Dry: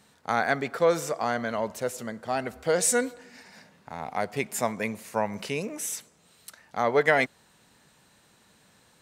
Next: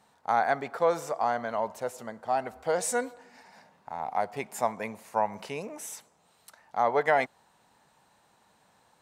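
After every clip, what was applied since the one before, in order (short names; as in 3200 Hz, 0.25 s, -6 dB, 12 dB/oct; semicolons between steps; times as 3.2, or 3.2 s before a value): bell 840 Hz +12 dB 1.1 oct; gain -8 dB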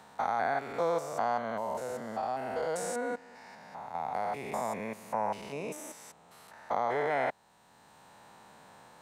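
stepped spectrum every 0.2 s; three-band squash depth 40%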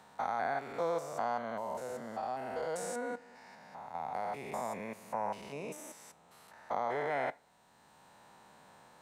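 reverb, pre-delay 3 ms, DRR 16.5 dB; gain -4 dB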